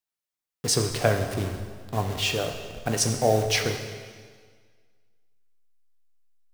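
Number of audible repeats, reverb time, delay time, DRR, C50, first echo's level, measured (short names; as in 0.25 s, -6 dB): none, 1.7 s, none, 5.0 dB, 7.0 dB, none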